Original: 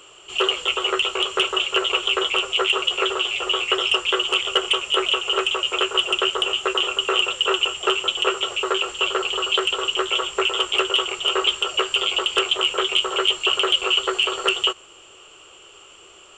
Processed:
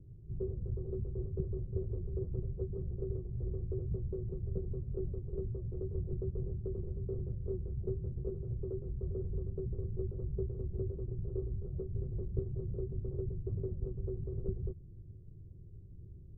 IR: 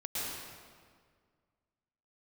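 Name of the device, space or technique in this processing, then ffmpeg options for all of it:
the neighbour's flat through the wall: -af "lowpass=f=160:w=0.5412,lowpass=f=160:w=1.3066,equalizer=f=110:t=o:w=0.64:g=5,volume=16.5dB"

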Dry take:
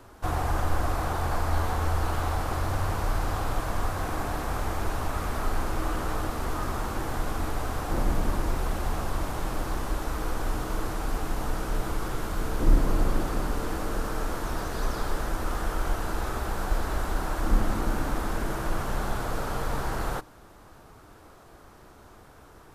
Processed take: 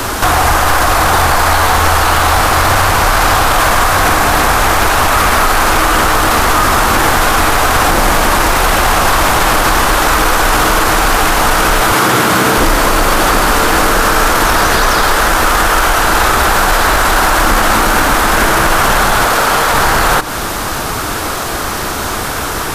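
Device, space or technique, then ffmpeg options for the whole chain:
mastering chain: -filter_complex "[0:a]asettb=1/sr,asplit=3[a][b][c];[a]atrim=end=11.924[d];[b]atrim=start=11.92:end=12.58,asetpts=PTS-STARTPTS,afade=t=in:d=0.004:c=qsin,afade=t=out:st=0.656:d=0.004:c=qsin,highpass=f=110:w=0.5412,highpass=f=110:w=1.3066[e];[c]atrim=start=12.576[f];[d][e]acrossfade=d=0.004:c1=hsin:c2=qsin[g];[g][f]acrossfade=d=0.004:c1=qsin:c2=hsin,equalizer=f=230:t=o:w=0.77:g=2,acrossover=split=440|3100[h][i][j];[h]acompressor=threshold=-36dB:ratio=4[k];[i]acompressor=threshold=-36dB:ratio=4[l];[j]acompressor=threshold=-53dB:ratio=4[m];[k][l][m]amix=inputs=3:normalize=0,acompressor=threshold=-39dB:ratio=1.5,asoftclip=type=tanh:threshold=-29dB,tiltshelf=f=1.1k:g=-6,asoftclip=type=hard:threshold=-32dB,alimiter=level_in=36dB:limit=-1dB:release=50:level=0:latency=1,asettb=1/sr,asplit=3[n][o][p];[n]atrim=end=19.254[q];[o]atrim=start=19.25:end=19.74,asetpts=PTS-STARTPTS,afade=t=in:d=0.004:c=qsin,afade=t=out:st=0.486:d=0.004:c=qsin,lowshelf=f=140:g=-9.5[r];[p]atrim=start=19.736[s];[q][r]acrossfade=d=0.004:c1=hsin:c2=qsin[t];[t][s]acrossfade=d=0.004:c1=qsin:c2=hsin,volume=-1dB"

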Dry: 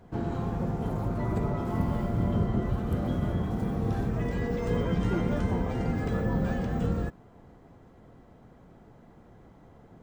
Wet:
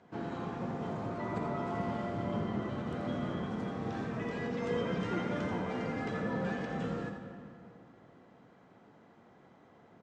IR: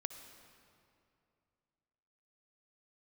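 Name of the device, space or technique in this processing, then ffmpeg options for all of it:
PA in a hall: -filter_complex "[0:a]highpass=170,equalizer=f=2.3k:t=o:w=2.6:g=6,aecho=1:1:85:0.376[a];[1:a]atrim=start_sample=2205[b];[a][b]afir=irnorm=-1:irlink=0,lowpass=f=7.6k:w=0.5412,lowpass=f=7.6k:w=1.3066,volume=-4dB"

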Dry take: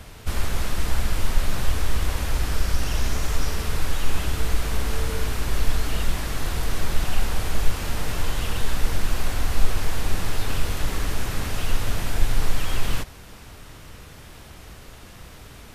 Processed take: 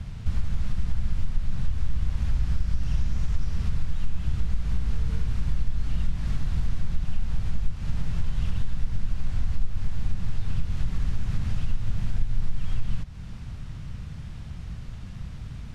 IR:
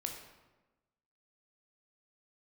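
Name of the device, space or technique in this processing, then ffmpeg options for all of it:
jukebox: -af "lowpass=6.6k,lowshelf=f=250:t=q:w=1.5:g=13.5,acompressor=threshold=-15dB:ratio=3,volume=-6dB"

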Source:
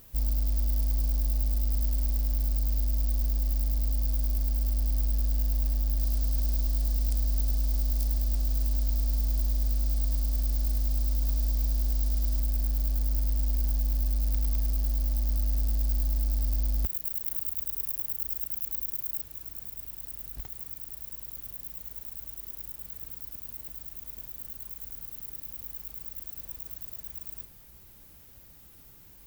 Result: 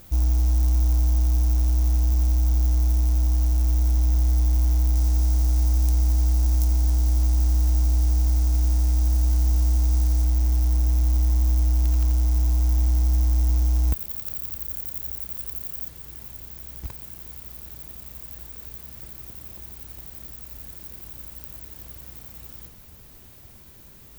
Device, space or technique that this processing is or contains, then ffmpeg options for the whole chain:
nightcore: -af "asetrate=53361,aresample=44100,volume=7dB"

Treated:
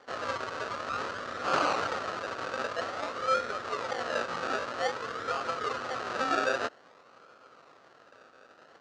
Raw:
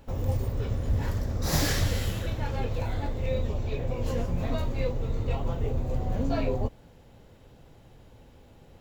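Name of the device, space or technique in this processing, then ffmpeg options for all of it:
circuit-bent sampling toy: -af "acrusher=samples=33:mix=1:aa=0.000001:lfo=1:lforange=19.8:lforate=0.51,highpass=600,equalizer=f=890:t=q:w=4:g=-5,equalizer=f=1.3k:t=q:w=4:g=9,equalizer=f=2.2k:t=q:w=4:g=-7,equalizer=f=3.4k:t=q:w=4:g=-6,equalizer=f=5.3k:t=q:w=4:g=-4,lowpass=f=5.5k:w=0.5412,lowpass=f=5.5k:w=1.3066,volume=5.5dB"

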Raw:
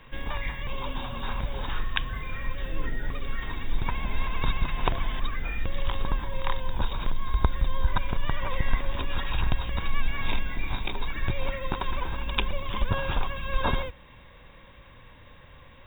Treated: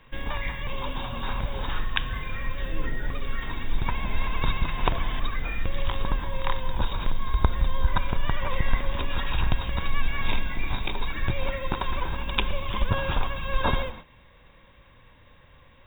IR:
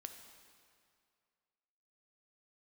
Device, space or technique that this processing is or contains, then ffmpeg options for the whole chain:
keyed gated reverb: -filter_complex "[0:a]asplit=3[a][b][c];[1:a]atrim=start_sample=2205[d];[b][d]afir=irnorm=-1:irlink=0[e];[c]apad=whole_len=699600[f];[e][f]sidechaingate=range=-33dB:threshold=-44dB:ratio=16:detection=peak,volume=5dB[g];[a][g]amix=inputs=2:normalize=0,volume=-4dB"

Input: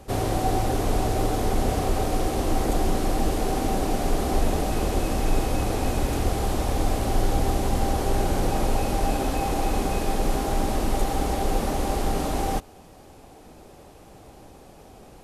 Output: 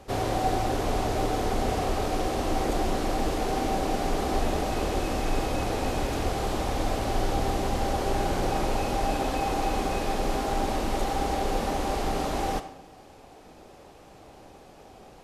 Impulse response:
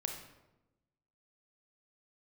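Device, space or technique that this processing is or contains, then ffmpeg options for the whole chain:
filtered reverb send: -filter_complex "[0:a]asplit=2[a][b];[b]highpass=f=470:p=1,lowpass=7.2k[c];[1:a]atrim=start_sample=2205[d];[c][d]afir=irnorm=-1:irlink=0,volume=1dB[e];[a][e]amix=inputs=2:normalize=0,volume=-6dB"

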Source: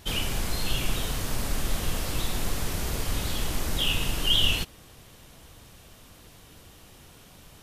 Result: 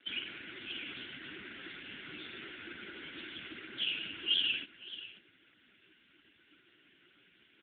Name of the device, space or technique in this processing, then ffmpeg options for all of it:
satellite phone: -af "afftfilt=real='re*(1-between(b*sr/4096,410,1300))':imag='im*(1-between(b*sr/4096,410,1300))':win_size=4096:overlap=0.75,highpass=400,lowpass=3.4k,aecho=1:1:545:0.188" -ar 8000 -c:a libopencore_amrnb -b:a 4750

